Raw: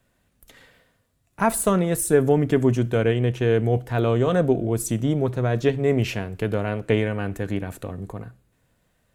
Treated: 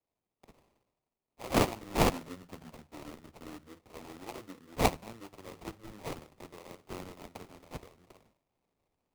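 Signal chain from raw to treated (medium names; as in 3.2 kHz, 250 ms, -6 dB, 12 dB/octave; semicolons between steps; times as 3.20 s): pitch bend over the whole clip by -11.5 st ending unshifted; in parallel at -0.5 dB: compression, threshold -29 dBFS, peak gain reduction 14.5 dB; on the sum: differentiator; sample-rate reducer 1.6 kHz, jitter 20%; three bands expanded up and down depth 40%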